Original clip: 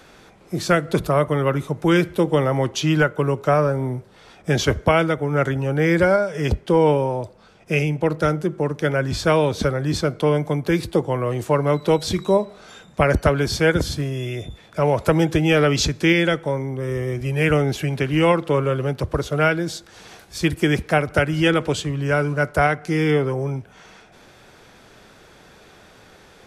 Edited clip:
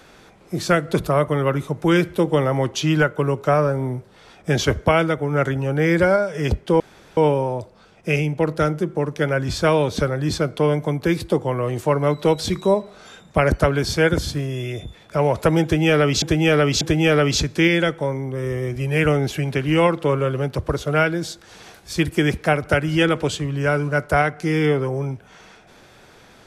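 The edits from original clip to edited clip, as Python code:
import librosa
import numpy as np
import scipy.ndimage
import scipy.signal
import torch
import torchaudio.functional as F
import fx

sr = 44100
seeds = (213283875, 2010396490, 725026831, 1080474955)

y = fx.edit(x, sr, fx.insert_room_tone(at_s=6.8, length_s=0.37),
    fx.repeat(start_s=15.26, length_s=0.59, count=3), tone=tone)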